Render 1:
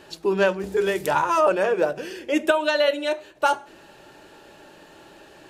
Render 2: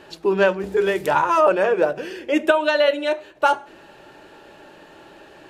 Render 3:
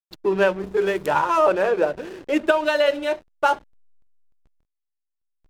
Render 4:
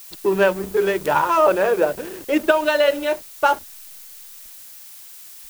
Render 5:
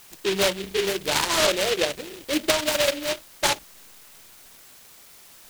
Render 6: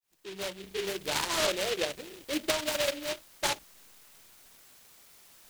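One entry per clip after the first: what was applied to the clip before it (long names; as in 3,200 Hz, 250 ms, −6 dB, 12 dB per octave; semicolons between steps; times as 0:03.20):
bass and treble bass −2 dB, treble −7 dB; level +3 dB
slack as between gear wheels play −29 dBFS; level −1.5 dB
background noise blue −43 dBFS; level +2 dB
short delay modulated by noise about 2,700 Hz, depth 0.19 ms; level −5.5 dB
fade in at the beginning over 1.03 s; level −7.5 dB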